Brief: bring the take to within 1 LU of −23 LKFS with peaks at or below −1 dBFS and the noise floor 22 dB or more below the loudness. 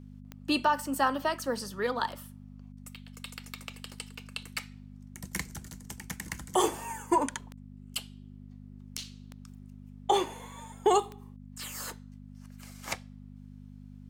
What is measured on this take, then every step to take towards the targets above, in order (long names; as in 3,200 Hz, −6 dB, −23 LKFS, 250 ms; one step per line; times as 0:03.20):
number of clicks 8; mains hum 50 Hz; hum harmonics up to 250 Hz; level of the hum −45 dBFS; integrated loudness −32.5 LKFS; sample peak −14.0 dBFS; target loudness −23.0 LKFS
→ click removal
hum removal 50 Hz, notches 5
level +9.5 dB